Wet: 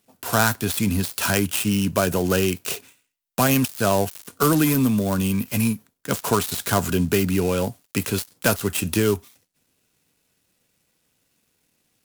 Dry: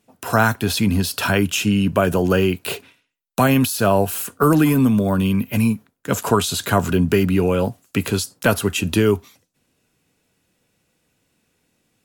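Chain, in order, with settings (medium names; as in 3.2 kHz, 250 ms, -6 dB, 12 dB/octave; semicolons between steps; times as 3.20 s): dead-time distortion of 0.1 ms; treble shelf 4.3 kHz +11.5 dB; trim -4 dB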